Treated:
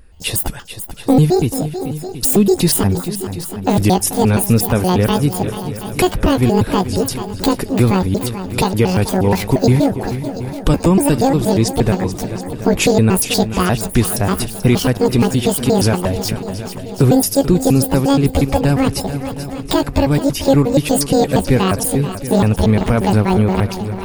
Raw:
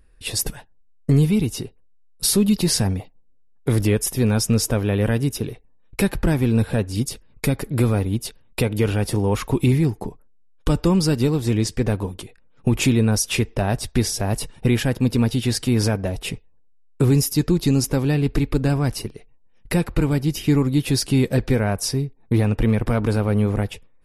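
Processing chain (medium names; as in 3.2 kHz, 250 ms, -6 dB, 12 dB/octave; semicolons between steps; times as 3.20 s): pitch shift switched off and on +10.5 st, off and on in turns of 118 ms; wow and flutter 29 cents; shuffle delay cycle 727 ms, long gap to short 1.5:1, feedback 41%, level -13 dB; in parallel at -2 dB: compression, threshold -31 dBFS, peak gain reduction 16.5 dB; on the sum: trim +4.5 dB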